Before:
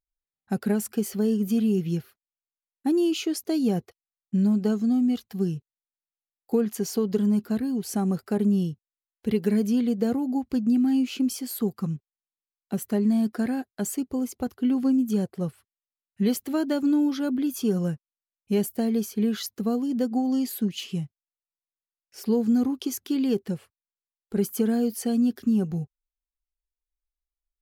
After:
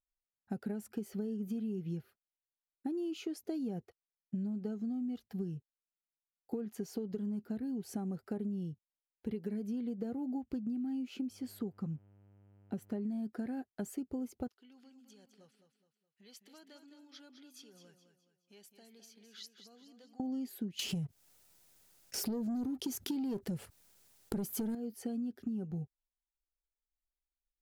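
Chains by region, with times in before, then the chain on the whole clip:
11.27–13.01 high shelf 8600 Hz -8.5 dB + buzz 100 Hz, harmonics 32, -57 dBFS -8 dB/oct
14.48–20.2 compressor 5:1, threshold -26 dBFS + band-pass 4300 Hz, Q 1.2 + feedback echo 0.21 s, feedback 40%, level -9 dB
20.79–24.75 tone controls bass +4 dB, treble +10 dB + sample leveller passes 2 + fast leveller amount 50%
whole clip: high shelf 2100 Hz -9.5 dB; notch 1100 Hz, Q 8.3; compressor 10:1, threshold -29 dBFS; gain -5.5 dB

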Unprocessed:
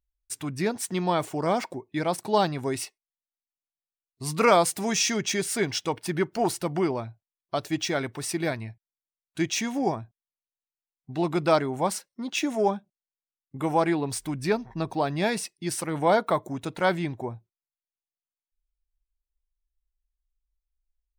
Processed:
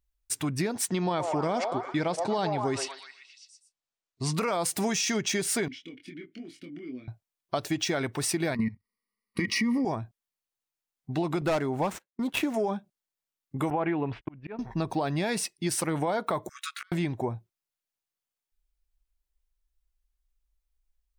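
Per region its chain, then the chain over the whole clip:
0.88–4.34 LPF 7700 Hz 24 dB/oct + delay with a stepping band-pass 0.12 s, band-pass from 640 Hz, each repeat 0.7 oct, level -6 dB
5.68–7.08 compressor, threshold -30 dBFS + vowel filter i + doubler 24 ms -4.5 dB
8.55–9.85 ripple EQ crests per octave 0.89, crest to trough 18 dB + level quantiser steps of 16 dB + small resonant body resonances 250/1200/1900/2900 Hz, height 17 dB, ringing for 25 ms
11.41–12.54 median filter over 9 samples + gate -43 dBFS, range -18 dB + overloaded stage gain 19.5 dB
13.7–14.59 gate -37 dBFS, range -38 dB + Chebyshev low-pass 2900 Hz, order 4 + auto swell 0.567 s
16.49–16.92 brick-wall FIR high-pass 1100 Hz + flipped gate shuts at -27 dBFS, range -41 dB + doubler 15 ms -4.5 dB
whole clip: limiter -18.5 dBFS; compressor, threshold -29 dBFS; gain +4.5 dB

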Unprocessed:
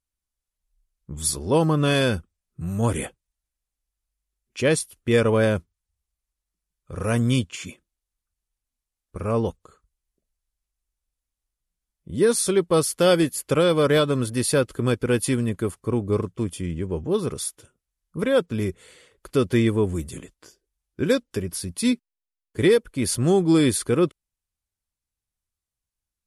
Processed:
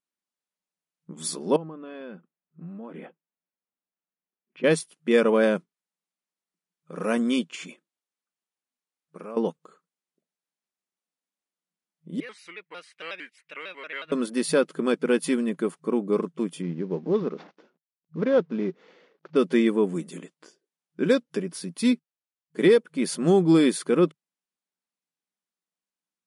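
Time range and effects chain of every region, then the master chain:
1.56–4.64 compressor, threshold -33 dBFS + air absorption 440 m
7.64–9.37 compressor, threshold -32 dBFS + low shelf 130 Hz -11.5 dB
12.2–14.12 band-pass 2200 Hz, Q 4.5 + shaped vibrato square 5.5 Hz, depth 160 cents
16.62–19.36 CVSD 32 kbps + high shelf 2200 Hz -12 dB
whole clip: FFT band-pass 160–11000 Hz; high shelf 5400 Hz -9.5 dB

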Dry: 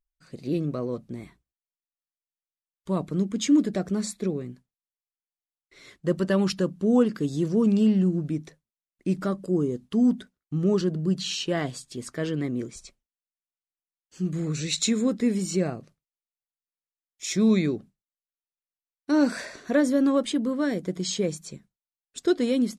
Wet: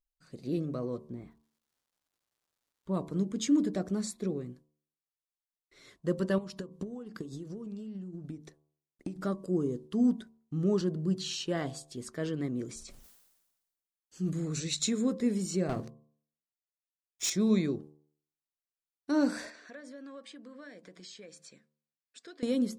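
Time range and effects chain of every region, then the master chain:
1.08–2.93 LPF 1400 Hz 6 dB/oct + crackle 480/s -64 dBFS
6.38–9.16 compressor 20:1, threshold -33 dBFS + transient shaper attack +8 dB, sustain -3 dB
12.65–14.64 high shelf 7600 Hz +5.5 dB + sustainer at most 49 dB/s
15.69–17.3 sample leveller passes 3 + notches 60/120/180/240/300/360 Hz
19.5–22.43 speaker cabinet 340–8800 Hz, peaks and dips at 380 Hz -9 dB, 880 Hz -5 dB, 1700 Hz +7 dB, 2400 Hz +7 dB, 4700 Hz +3 dB, 6700 Hz -4 dB + compressor 3:1, threshold -44 dBFS
whole clip: bell 2400 Hz -4 dB 0.85 oct; de-hum 74.95 Hz, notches 15; gain -5 dB

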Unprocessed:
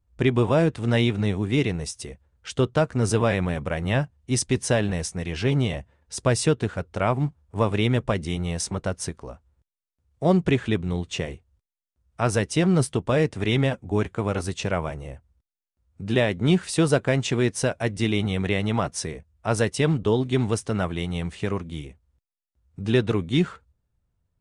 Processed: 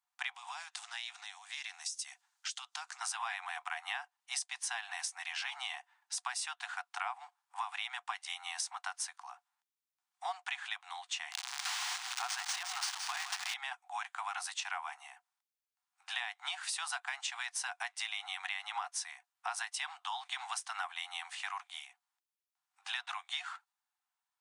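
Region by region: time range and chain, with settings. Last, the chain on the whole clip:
0.36–3.01 bell 6500 Hz +13.5 dB 1.9 oct + compressor 5:1, threshold -34 dBFS + Doppler distortion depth 0.1 ms
11.32–13.54 switching spikes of -15.5 dBFS + echo 0.165 s -10 dB + decimation joined by straight lines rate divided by 3×
whole clip: Chebyshev high-pass 720 Hz, order 10; compressor, threshold -35 dBFS

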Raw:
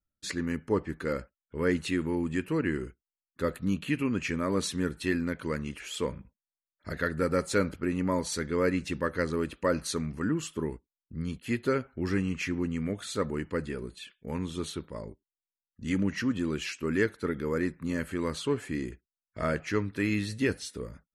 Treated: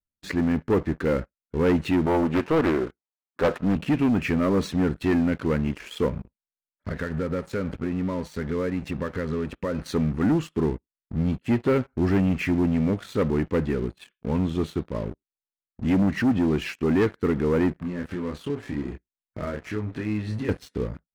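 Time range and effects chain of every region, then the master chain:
2.06–3.76 HPF 230 Hz 6 dB/oct + bell 860 Hz +12.5 dB 1.4 oct + Doppler distortion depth 0.55 ms
6.08–9.79 notch 320 Hz, Q 5.9 + compressor 3:1, threshold -36 dBFS
17.8–20.49 compressor 3:1, threshold -41 dBFS + doubler 28 ms -4 dB
whole clip: EQ curve 260 Hz 0 dB, 2500 Hz -7 dB, 11000 Hz -23 dB; sample leveller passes 3

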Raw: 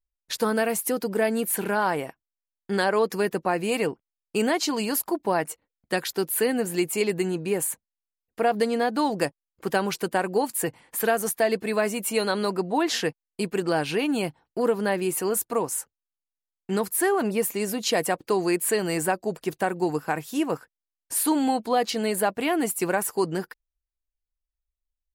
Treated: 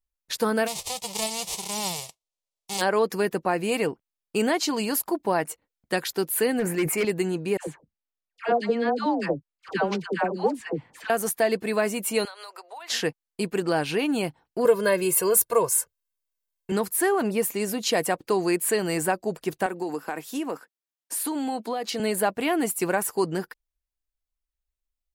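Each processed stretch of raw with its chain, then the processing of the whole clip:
0.66–2.8 spectral whitening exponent 0.1 + LPF 8300 Hz + fixed phaser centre 640 Hz, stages 4
6.59–7.05 resonant high shelf 2700 Hz -6 dB, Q 3 + overloaded stage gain 19.5 dB + sustainer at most 48 dB/s
7.57–11.1 air absorption 150 m + dispersion lows, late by 0.105 s, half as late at 820 Hz
12.25–12.9 Bessel high-pass 920 Hz, order 6 + notch 1700 Hz, Q 22 + compressor 8:1, threshold -37 dBFS
14.65–16.72 high shelf 9400 Hz +7.5 dB + comb 1.9 ms, depth 93%
19.66–22 HPF 200 Hz 24 dB/oct + compressor 5:1, threshold -25 dBFS
whole clip: dry

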